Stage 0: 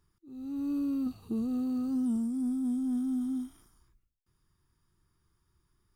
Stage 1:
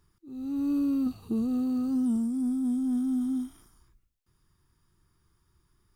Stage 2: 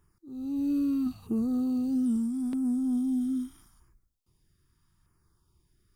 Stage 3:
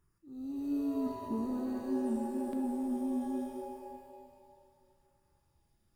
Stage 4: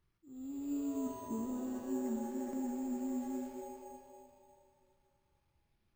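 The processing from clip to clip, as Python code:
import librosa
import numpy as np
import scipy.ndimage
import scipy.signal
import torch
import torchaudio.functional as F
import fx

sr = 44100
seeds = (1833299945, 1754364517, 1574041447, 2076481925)

y1 = fx.rider(x, sr, range_db=10, speed_s=2.0)
y1 = F.gain(torch.from_numpy(y1), 3.5).numpy()
y2 = fx.filter_lfo_notch(y1, sr, shape='saw_down', hz=0.79, low_hz=340.0, high_hz=4400.0, q=1.1)
y3 = fx.rev_shimmer(y2, sr, seeds[0], rt60_s=2.0, semitones=7, shimmer_db=-2, drr_db=4.0)
y3 = F.gain(torch.from_numpy(y3), -7.0).numpy()
y4 = np.repeat(y3[::6], 6)[:len(y3)]
y4 = F.gain(torch.from_numpy(y4), -4.0).numpy()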